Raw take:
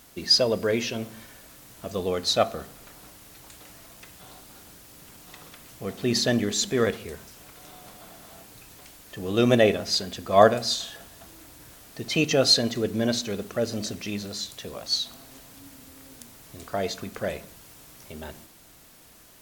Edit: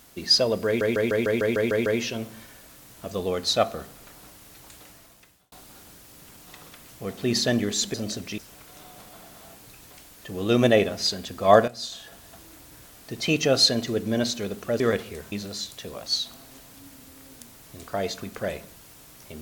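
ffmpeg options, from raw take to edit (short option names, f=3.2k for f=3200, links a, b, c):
-filter_complex "[0:a]asplit=15[a][b][c][d][e][f][g][h][i][j][k][l][m][n][o];[a]atrim=end=0.812[p];[b]atrim=start=0.658:end=0.812[q];[c]atrim=start=0.658:end=0.812[r];[d]atrim=start=0.658:end=0.812[s];[e]atrim=start=0.658:end=0.812[t];[f]atrim=start=0.658:end=0.812[u];[g]atrim=start=0.658:end=0.812[v];[h]atrim=start=0.658:end=0.812[w];[i]atrim=start=0.658:end=4.32,asetpts=PTS-STARTPTS,afade=t=out:st=2.932:d=0.73[x];[j]atrim=start=4.32:end=6.742,asetpts=PTS-STARTPTS,afade=t=in:d=0.004:c=hsin[y];[k]atrim=start=13.678:end=14.122[z];[l]atrim=start=7.258:end=10.56,asetpts=PTS-STARTPTS,afade=t=out:st=3.298:d=0.004:c=hsin:silence=0.199526[aa];[m]atrim=start=10.56:end=13.682,asetpts=PTS-STARTPTS,afade=t=in:d=0.58:silence=0.199526[ab];[n]atrim=start=6.738:end=7.262[ac];[o]atrim=start=14.118[ad];[p][q]acrossfade=d=0.004:c1=hsin:c2=hsin[ae];[ae][r]acrossfade=d=0.004:c1=hsin:c2=hsin[af];[af][s]acrossfade=d=0.004:c1=hsin:c2=hsin[ag];[ag][t]acrossfade=d=0.004:c1=hsin:c2=hsin[ah];[ah][u]acrossfade=d=0.004:c1=hsin:c2=hsin[ai];[ai][v]acrossfade=d=0.004:c1=hsin:c2=hsin[aj];[aj][w]acrossfade=d=0.004:c1=hsin:c2=hsin[ak];[x][y]concat=n=2:v=0:a=1[al];[ak][al]acrossfade=d=0.004:c1=hsin:c2=hsin[am];[am][z]acrossfade=d=0.004:c1=hsin:c2=hsin[an];[aa][ab]concat=n=2:v=0:a=1[ao];[an][ao]acrossfade=d=0.004:c1=hsin:c2=hsin[ap];[ap][ac]acrossfade=d=0.004:c1=hsin:c2=hsin[aq];[aq][ad]acrossfade=d=0.004:c1=hsin:c2=hsin"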